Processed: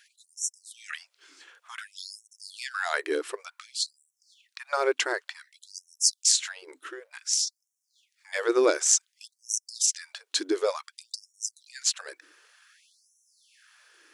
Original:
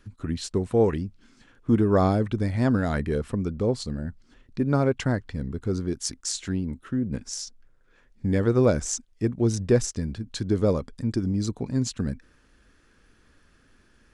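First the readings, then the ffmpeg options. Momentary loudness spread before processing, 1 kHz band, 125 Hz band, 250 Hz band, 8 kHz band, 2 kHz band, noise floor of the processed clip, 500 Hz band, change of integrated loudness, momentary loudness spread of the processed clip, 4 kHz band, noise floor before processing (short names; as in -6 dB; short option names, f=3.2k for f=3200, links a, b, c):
11 LU, -2.0 dB, under -40 dB, -14.0 dB, +9.0 dB, +5.0 dB, -80 dBFS, -5.0 dB, -1.0 dB, 20 LU, +8.0 dB, -60 dBFS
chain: -af "equalizer=f=580:w=0.7:g=-11,afftfilt=real='re*gte(b*sr/1024,290*pow(5500/290,0.5+0.5*sin(2*PI*0.55*pts/sr)))':imag='im*gte(b*sr/1024,290*pow(5500/290,0.5+0.5*sin(2*PI*0.55*pts/sr)))':win_size=1024:overlap=0.75,volume=9dB"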